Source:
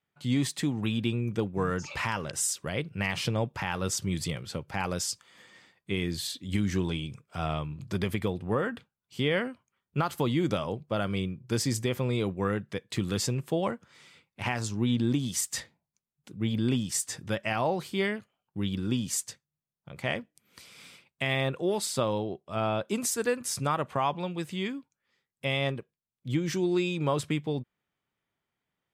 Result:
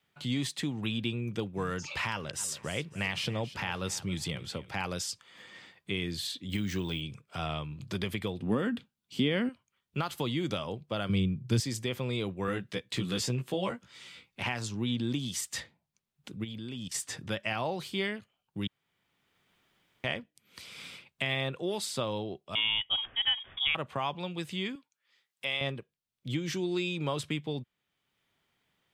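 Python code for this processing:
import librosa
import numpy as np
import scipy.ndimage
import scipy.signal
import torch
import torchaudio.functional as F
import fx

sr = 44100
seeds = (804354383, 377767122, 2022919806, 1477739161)

y = fx.echo_feedback(x, sr, ms=275, feedback_pct=29, wet_db=-17, at=(2.38, 4.71), fade=0.02)
y = fx.resample_bad(y, sr, factor=2, down='none', up='hold', at=(6.49, 7.01))
y = fx.peak_eq(y, sr, hz=240.0, db=12.5, octaves=1.1, at=(8.4, 9.49))
y = fx.peak_eq(y, sr, hz=120.0, db=13.5, octaves=2.4, at=(11.09, 11.6))
y = fx.doubler(y, sr, ms=16.0, db=-2.5, at=(12.46, 14.43))
y = fx.level_steps(y, sr, step_db=19, at=(16.43, 16.93), fade=0.02)
y = fx.freq_invert(y, sr, carrier_hz=3500, at=(22.55, 23.75))
y = fx.highpass(y, sr, hz=930.0, slope=6, at=(24.75, 25.61))
y = fx.edit(y, sr, fx.room_tone_fill(start_s=18.67, length_s=1.37), tone=tone)
y = fx.peak_eq(y, sr, hz=3300.0, db=6.0, octaves=1.2)
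y = fx.band_squash(y, sr, depth_pct=40)
y = F.gain(torch.from_numpy(y), -5.0).numpy()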